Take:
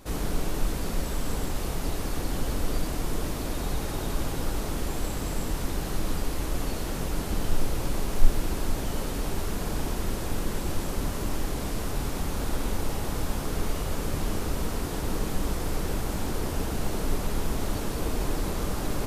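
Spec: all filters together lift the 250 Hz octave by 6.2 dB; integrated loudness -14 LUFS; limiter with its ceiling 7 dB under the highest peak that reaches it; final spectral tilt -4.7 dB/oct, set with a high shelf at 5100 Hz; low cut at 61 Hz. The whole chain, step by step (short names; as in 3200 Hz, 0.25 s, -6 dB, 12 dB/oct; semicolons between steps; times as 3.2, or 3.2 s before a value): HPF 61 Hz; bell 250 Hz +8 dB; high shelf 5100 Hz +3 dB; gain +17.5 dB; limiter -4.5 dBFS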